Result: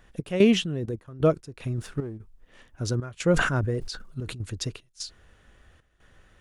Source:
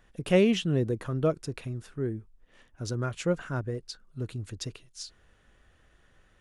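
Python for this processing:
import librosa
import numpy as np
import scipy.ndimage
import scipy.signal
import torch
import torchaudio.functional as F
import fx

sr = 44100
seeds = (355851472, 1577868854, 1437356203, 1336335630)

y = fx.peak_eq(x, sr, hz=73.0, db=3.0, octaves=0.83)
y = fx.level_steps(y, sr, step_db=17, at=(0.64, 1.22))
y = fx.leveller(y, sr, passes=1, at=(1.78, 2.18))
y = fx.step_gate(y, sr, bpm=75, pattern='x.xxx.x.xx.xxx', floor_db=-12.0, edge_ms=4.5)
y = fx.sustainer(y, sr, db_per_s=52.0, at=(3.3, 4.35))
y = y * 10.0 ** (5.0 / 20.0)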